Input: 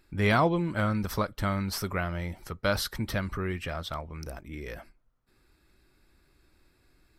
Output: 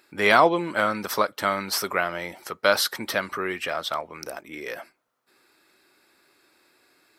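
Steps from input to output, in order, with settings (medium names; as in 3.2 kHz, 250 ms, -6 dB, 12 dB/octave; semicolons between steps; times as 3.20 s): high-pass 410 Hz 12 dB/octave; trim +8.5 dB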